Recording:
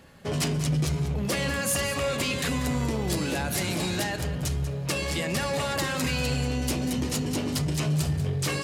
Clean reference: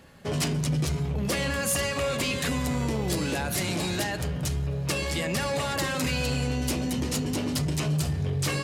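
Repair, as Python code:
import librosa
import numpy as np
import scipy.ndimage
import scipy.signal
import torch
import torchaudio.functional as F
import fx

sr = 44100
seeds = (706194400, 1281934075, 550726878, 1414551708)

y = fx.fix_echo_inverse(x, sr, delay_ms=191, level_db=-13.0)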